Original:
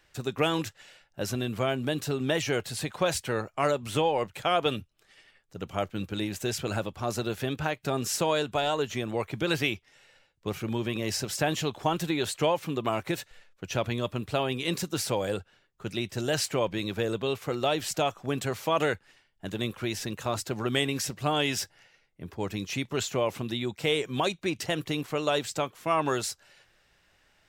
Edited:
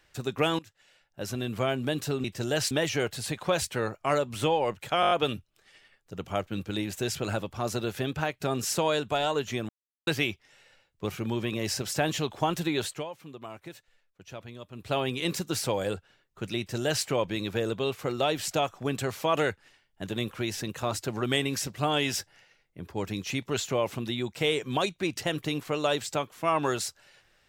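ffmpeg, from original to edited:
-filter_complex "[0:a]asplit=13[a][b][c][d][e][f][g][h][i][j][k][l][m];[a]atrim=end=0.59,asetpts=PTS-STARTPTS,afade=t=out:st=0.586:d=0.004:c=hsin:silence=0.0841395[n];[b]atrim=start=0.59:end=2.242,asetpts=PTS-STARTPTS,afade=t=in:d=1.01:silence=0.0841395[o];[c]atrim=start=16.008:end=16.482[p];[d]atrim=start=2.238:end=4.562[q];[e]atrim=start=4.538:end=4.562[r];[f]atrim=start=4.538:end=4.562[s];[g]atrim=start=4.538:end=4.562[t];[h]atrim=start=4.538:end=4.562[u];[i]atrim=start=4.538:end=9.12,asetpts=PTS-STARTPTS,afade=t=out:st=4.578:d=0.004:c=hsin[v];[j]atrim=start=9.12:end=9.5,asetpts=PTS-STARTPTS,volume=0[w];[k]atrim=start=9.5:end=12.48,asetpts=PTS-STARTPTS,afade=t=in:d=0.004:c=hsin,afade=t=out:st=2.75:d=0.23:silence=0.211349[x];[l]atrim=start=12.48:end=14.16,asetpts=PTS-STARTPTS,volume=-13.5dB[y];[m]atrim=start=14.16,asetpts=PTS-STARTPTS,afade=t=in:d=0.23:silence=0.211349[z];[n][o]concat=n=2:v=0:a=1[aa];[aa][p]acrossfade=d=0.004:c1=hsin:c2=hsin[ab];[ab][q]acrossfade=d=0.004:c1=hsin:c2=hsin[ac];[ac][r]acrossfade=d=0.004:c1=hsin:c2=hsin[ad];[ad][s]acrossfade=d=0.004:c1=hsin:c2=hsin[ae];[ae][t]acrossfade=d=0.004:c1=hsin:c2=hsin[af];[af][u]acrossfade=d=0.004:c1=hsin:c2=hsin[ag];[v][w][x][y][z]concat=n=5:v=0:a=1[ah];[ag][ah]acrossfade=d=0.004:c1=hsin:c2=hsin"

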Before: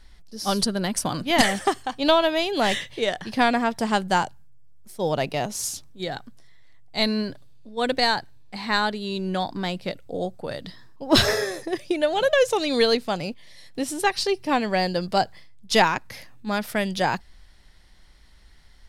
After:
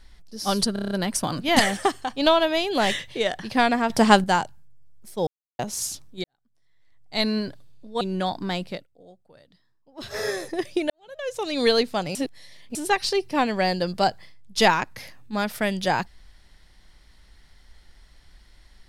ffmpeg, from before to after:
-filter_complex "[0:a]asplit=18[a][b][c][d][e][f][g][h][i][j][k][l][m][n][o][p][q][r];[a]atrim=end=0.762[s];[b]atrim=start=0.728:end=0.762[t];[c]atrim=start=0.728:end=0.762[u];[d]atrim=start=0.728:end=0.762[v];[e]atrim=start=0.728:end=0.762[w];[f]atrim=start=0.728:end=0.762[x];[g]atrim=start=0.728:end=3.722[y];[h]atrim=start=3.718:end=4.062,asetpts=PTS-STARTPTS,volume=7.5dB[z];[i]atrim=start=4.058:end=5.09,asetpts=PTS-STARTPTS,afade=t=out:st=1.028:d=0.004:c=hsin[aa];[j]atrim=start=5.09:end=5.41,asetpts=PTS-STARTPTS,volume=0[ab];[k]atrim=start=5.41:end=6.06,asetpts=PTS-STARTPTS,afade=t=in:d=0.004:c=hsin,afade=t=out:st=0.646:d=0.004:c=hsin[ac];[l]atrim=start=6.06:end=7.832,asetpts=PTS-STARTPTS,afade=t=in:d=1.04:c=qua[ad];[m]atrim=start=9.148:end=10.01,asetpts=PTS-STARTPTS,afade=t=out:st=0.662:d=0.2:silence=0.0841395[ae];[n]atrim=start=10.01:end=11.24,asetpts=PTS-STARTPTS,volume=-21.5dB[af];[o]atrim=start=11.24:end=12.04,asetpts=PTS-STARTPTS,afade=t=in:d=0.2:silence=0.0841395,afade=t=out:st=0.796:d=0.004:c=hsin[ag];[p]atrim=start=12.04:end=13.292,asetpts=PTS-STARTPTS,afade=t=in:d=0.73:c=qua[ah];[q]atrim=start=13.288:end=13.892,asetpts=PTS-STARTPTS,areverse[ai];[r]atrim=start=13.888[aj];[s][t]acrossfade=d=0.004:c1=hsin:c2=hsin[ak];[ak][u]acrossfade=d=0.004:c1=hsin:c2=hsin[al];[al][v]acrossfade=d=0.004:c1=hsin:c2=hsin[am];[am][w]acrossfade=d=0.004:c1=hsin:c2=hsin[an];[an][x]acrossfade=d=0.004:c1=hsin:c2=hsin[ao];[ao][y]acrossfade=d=0.004:c1=hsin:c2=hsin[ap];[ap][z]acrossfade=d=0.004:c1=hsin:c2=hsin[aq];[aa][ab][ac][ad]concat=n=4:v=0:a=1[ar];[aq][ar]acrossfade=d=0.004:c1=hsin:c2=hsin[as];[ae][af][ag][ah]concat=n=4:v=0:a=1[at];[as][at]acrossfade=d=0.004:c1=hsin:c2=hsin[au];[au][ai]acrossfade=d=0.004:c1=hsin:c2=hsin[av];[av][aj]acrossfade=d=0.004:c1=hsin:c2=hsin"

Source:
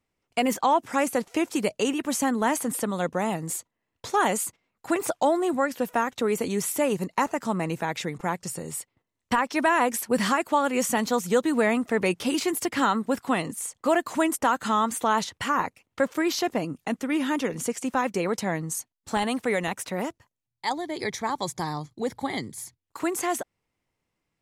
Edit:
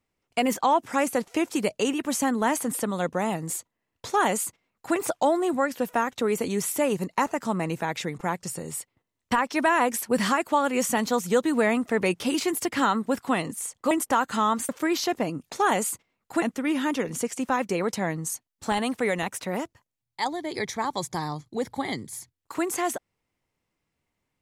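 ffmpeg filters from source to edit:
-filter_complex "[0:a]asplit=5[a][b][c][d][e];[a]atrim=end=13.912[f];[b]atrim=start=14.228:end=15.012[g];[c]atrim=start=16.038:end=16.872[h];[d]atrim=start=4.058:end=4.962[i];[e]atrim=start=16.868[j];[f][g]acrossfade=d=0.004:c1=hsin:c2=hsin[k];[k][h]acrossfade=d=0.004:c1=hsin:c2=hsin[l];[l][i]acrossfade=d=0.004:c1=hsin:c2=hsin[m];[m][j]acrossfade=d=0.004:c1=hsin:c2=hsin"

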